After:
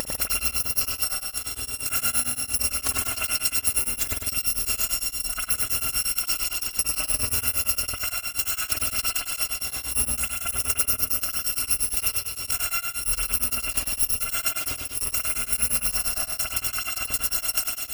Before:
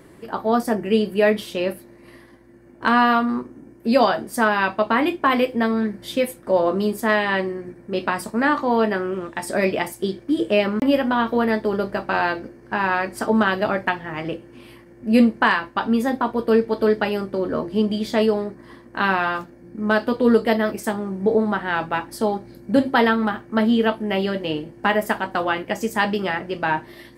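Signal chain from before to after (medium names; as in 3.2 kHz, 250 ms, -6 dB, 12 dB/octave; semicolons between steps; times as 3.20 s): bit-reversed sample order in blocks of 256 samples; hum notches 60/120/180 Hz; transient shaper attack +11 dB, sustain -5 dB; upward compressor, threshold -15 dBFS; dynamic bell 3.6 kHz, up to -7 dB, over -35 dBFS, Q 1.8; compression 10:1, threshold -21 dBFS, peak gain reduction 17.5 dB; time stretch by phase-locked vocoder 0.66×; on a send: feedback echo behind a high-pass 97 ms, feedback 70%, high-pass 3.5 kHz, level -4 dB; on the sum: spring tank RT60 1.4 s, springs 50 ms, chirp 70 ms, DRR -5.5 dB; tremolo of two beating tones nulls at 8.7 Hz; trim +1.5 dB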